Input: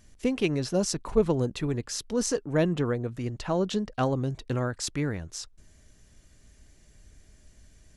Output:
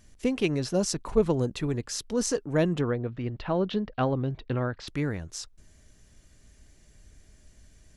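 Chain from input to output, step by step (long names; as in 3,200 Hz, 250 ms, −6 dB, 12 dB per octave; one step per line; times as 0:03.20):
0:02.81–0:04.88: low-pass filter 3,900 Hz 24 dB per octave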